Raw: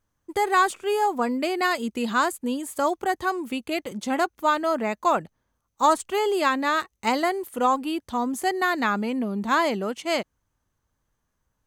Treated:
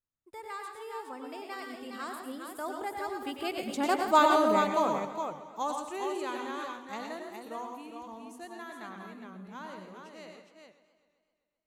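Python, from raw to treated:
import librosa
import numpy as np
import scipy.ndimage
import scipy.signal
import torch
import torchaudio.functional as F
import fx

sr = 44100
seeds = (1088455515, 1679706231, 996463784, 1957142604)

p1 = fx.doppler_pass(x, sr, speed_mps=25, closest_m=4.3, pass_at_s=4.19)
p2 = fx.dynamic_eq(p1, sr, hz=1700.0, q=2.7, threshold_db=-49.0, ratio=4.0, max_db=-5)
p3 = fx.rider(p2, sr, range_db=5, speed_s=0.5)
p4 = p2 + F.gain(torch.from_numpy(p3), 1.5).numpy()
p5 = fx.echo_multitap(p4, sr, ms=(96, 112, 170, 413), db=(-8.5, -7.0, -12.0, -6.0))
p6 = fx.echo_warbled(p5, sr, ms=129, feedback_pct=65, rate_hz=2.8, cents=105, wet_db=-14)
y = F.gain(torch.from_numpy(p6), -4.0).numpy()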